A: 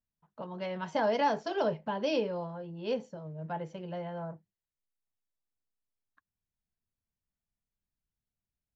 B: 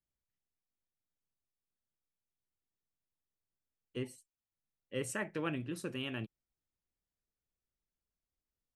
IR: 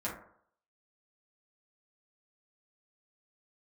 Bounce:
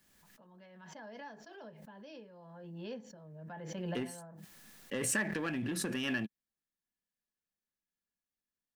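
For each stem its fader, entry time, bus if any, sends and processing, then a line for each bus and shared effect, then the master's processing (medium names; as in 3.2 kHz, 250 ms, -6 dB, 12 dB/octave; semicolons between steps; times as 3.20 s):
2.29 s -21 dB -> 2.62 s -11 dB, 0.00 s, no send, gate -55 dBFS, range -7 dB
+1.0 dB, 0.00 s, no send, compression, threshold -39 dBFS, peak gain reduction 8 dB; waveshaping leveller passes 2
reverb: none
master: bass shelf 330 Hz -11.5 dB; small resonant body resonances 210/1700 Hz, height 12 dB, ringing for 30 ms; swell ahead of each attack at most 29 dB/s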